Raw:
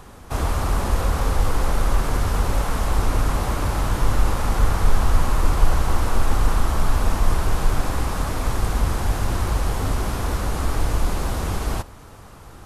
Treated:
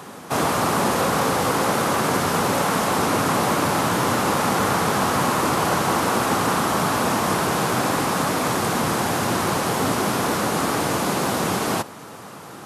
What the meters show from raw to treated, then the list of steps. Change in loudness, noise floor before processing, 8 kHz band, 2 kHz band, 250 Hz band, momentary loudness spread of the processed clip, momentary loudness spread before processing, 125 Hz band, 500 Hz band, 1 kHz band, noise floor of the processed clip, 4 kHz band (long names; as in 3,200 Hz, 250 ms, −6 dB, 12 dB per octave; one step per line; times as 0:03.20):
+3.0 dB, −42 dBFS, +7.5 dB, +7.5 dB, +7.0 dB, 2 LU, 3 LU, −4.5 dB, +7.5 dB, +7.5 dB, −39 dBFS, +7.5 dB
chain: high-pass filter 150 Hz 24 dB per octave
level +7.5 dB